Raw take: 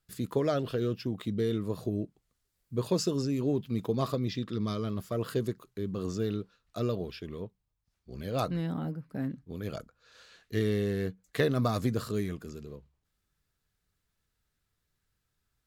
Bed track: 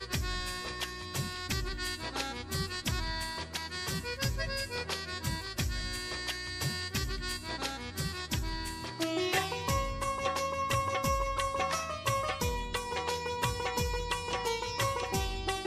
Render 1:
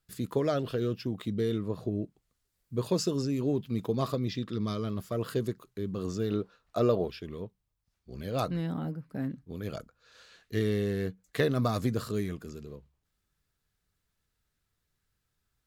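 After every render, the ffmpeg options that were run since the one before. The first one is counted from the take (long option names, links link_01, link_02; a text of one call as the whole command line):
ffmpeg -i in.wav -filter_complex "[0:a]asettb=1/sr,asplit=3[link_01][link_02][link_03];[link_01]atrim=end=1.614[link_04];[link_02]atrim=start=1.61:end=2.03,asetpts=PTS-STARTPTS,afade=type=in:duration=0.004:curve=qsin,afade=type=out:start_time=0.416:duration=0.004:curve=qsin,highshelf=frequency=5000:gain=-12[link_05];[link_03]atrim=start=2.026[link_06];[link_04][link_05]acrossfade=duration=0.004:curve1=hsin:curve2=qsin[link_07];[link_07][link_06]acrossfade=duration=0.004:curve1=qsin:curve2=hsin,asettb=1/sr,asplit=3[link_08][link_09][link_10];[link_08]atrim=end=6.314[link_11];[link_09]atrim=start=6.31:end=7.08,asetpts=PTS-STARTPTS,afade=type=in:duration=0.004:curve=qsin,afade=type=out:start_time=0.766:duration=0.004:curve=qsin,equalizer=frequency=720:width_type=o:width=2.4:gain=9.5[link_12];[link_10]atrim=start=7.076[link_13];[link_11][link_12]acrossfade=duration=0.004:curve1=hsin:curve2=qsin[link_14];[link_14][link_13]acrossfade=duration=0.004:curve1=qsin:curve2=hsin" out.wav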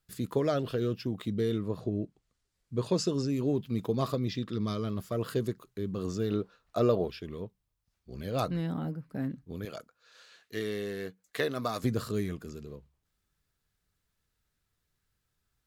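ffmpeg -i in.wav -filter_complex "[0:a]asettb=1/sr,asplit=3[link_01][link_02][link_03];[link_01]atrim=end=1.804[link_04];[link_02]atrim=start=1.8:end=3.28,asetpts=PTS-STARTPTS,afade=type=in:duration=0.004:curve=qsin,afade=type=out:start_time=1.476:duration=0.004:curve=qsin,lowpass=8500[link_05];[link_03]atrim=start=3.276[link_06];[link_04][link_05]acrossfade=duration=0.004:curve1=hsin:curve2=qsin[link_07];[link_07][link_06]acrossfade=duration=0.004:curve1=qsin:curve2=hsin,asettb=1/sr,asplit=3[link_08][link_09][link_10];[link_08]atrim=end=9.654[link_11];[link_09]atrim=start=9.65:end=11.84,asetpts=PTS-STARTPTS,afade=type=in:duration=0.004:curve=qsin,afade=type=out:start_time=2.186:duration=0.004:curve=qsin,highpass=frequency=500:poles=1[link_12];[link_10]atrim=start=11.836[link_13];[link_11][link_12]acrossfade=duration=0.004:curve1=hsin:curve2=qsin[link_14];[link_14][link_13]acrossfade=duration=0.004:curve1=qsin:curve2=hsin" out.wav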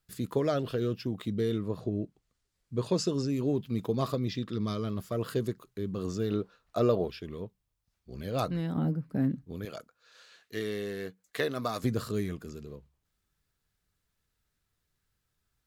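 ffmpeg -i in.wav -filter_complex "[0:a]asettb=1/sr,asplit=3[link_01][link_02][link_03];[link_01]atrim=end=8.764[link_04];[link_02]atrim=start=8.76:end=9.46,asetpts=PTS-STARTPTS,afade=type=in:duration=0.004:curve=qsin,afade=type=out:start_time=0.696:duration=0.004:curve=qsin,equalizer=frequency=190:width=0.42:gain=6.5[link_05];[link_03]atrim=start=9.456[link_06];[link_04][link_05]acrossfade=duration=0.004:curve1=hsin:curve2=qsin[link_07];[link_07][link_06]acrossfade=duration=0.004:curve1=qsin:curve2=hsin" out.wav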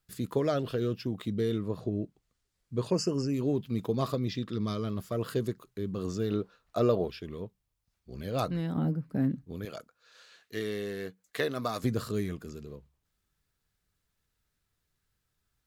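ffmpeg -i in.wav -filter_complex "[0:a]asettb=1/sr,asplit=3[link_01][link_02][link_03];[link_01]atrim=end=2.904[link_04];[link_02]atrim=start=2.9:end=3.34,asetpts=PTS-STARTPTS,afade=type=in:duration=0.004:curve=qsin,afade=type=out:start_time=0.436:duration=0.004:curve=qsin,asuperstop=centerf=3700:order=20:qfactor=2.8[link_05];[link_03]atrim=start=3.336[link_06];[link_04][link_05]acrossfade=duration=0.004:curve1=hsin:curve2=qsin[link_07];[link_07][link_06]acrossfade=duration=0.004:curve1=qsin:curve2=hsin" out.wav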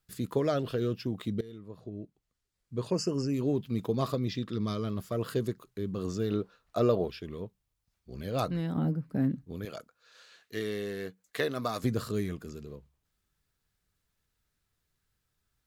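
ffmpeg -i in.wav -filter_complex "[0:a]asplit=2[link_01][link_02];[link_01]atrim=end=1.41,asetpts=PTS-STARTPTS,afade=type=out:start_time=1.406:duration=0.004:curve=hsin:silence=0.112202[link_03];[link_02]atrim=start=1.41,asetpts=PTS-STARTPTS,afade=type=in:duration=1.91:silence=0.112202[link_04];[link_03][link_04]concat=n=2:v=0:a=1" out.wav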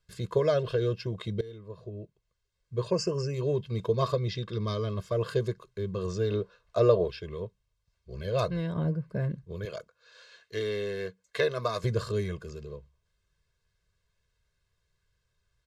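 ffmpeg -i in.wav -af "lowpass=6600,aecho=1:1:1.9:0.96" out.wav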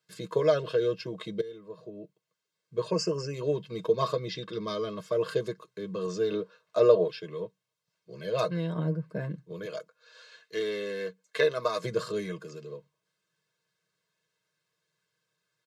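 ffmpeg -i in.wav -af "highpass=frequency=170:width=0.5412,highpass=frequency=170:width=1.3066,aecho=1:1:6.4:0.49" out.wav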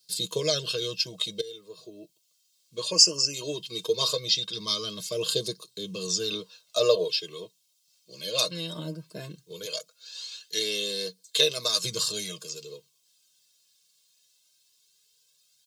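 ffmpeg -i in.wav -af "flanger=delay=0.2:depth=3.4:regen=37:speed=0.18:shape=sinusoidal,aexciter=amount=10.9:drive=5.4:freq=2800" out.wav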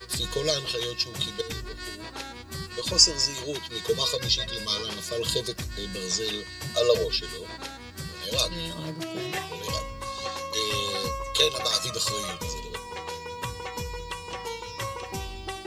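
ffmpeg -i in.wav -i bed.wav -filter_complex "[1:a]volume=-2dB[link_01];[0:a][link_01]amix=inputs=2:normalize=0" out.wav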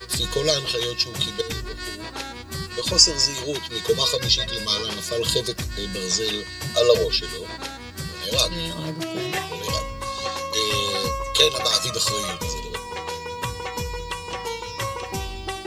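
ffmpeg -i in.wav -af "volume=5dB,alimiter=limit=-2dB:level=0:latency=1" out.wav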